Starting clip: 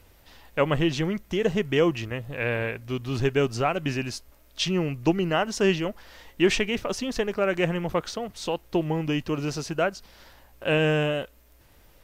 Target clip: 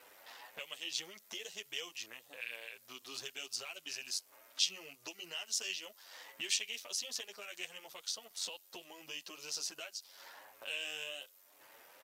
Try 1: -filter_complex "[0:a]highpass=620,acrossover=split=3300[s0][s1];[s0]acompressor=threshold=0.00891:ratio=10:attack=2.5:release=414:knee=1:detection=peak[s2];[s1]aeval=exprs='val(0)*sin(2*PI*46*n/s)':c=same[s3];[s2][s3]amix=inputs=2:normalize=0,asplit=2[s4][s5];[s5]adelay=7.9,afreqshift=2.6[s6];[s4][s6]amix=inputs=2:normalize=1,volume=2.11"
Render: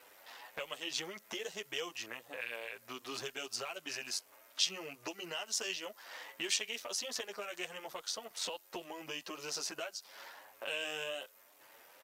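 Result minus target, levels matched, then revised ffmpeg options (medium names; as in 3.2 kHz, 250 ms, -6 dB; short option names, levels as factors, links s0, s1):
compression: peak gain reduction -9 dB
-filter_complex "[0:a]highpass=620,acrossover=split=3300[s0][s1];[s0]acompressor=threshold=0.00282:ratio=10:attack=2.5:release=414:knee=1:detection=peak[s2];[s1]aeval=exprs='val(0)*sin(2*PI*46*n/s)':c=same[s3];[s2][s3]amix=inputs=2:normalize=0,asplit=2[s4][s5];[s5]adelay=7.9,afreqshift=2.6[s6];[s4][s6]amix=inputs=2:normalize=1,volume=2.11"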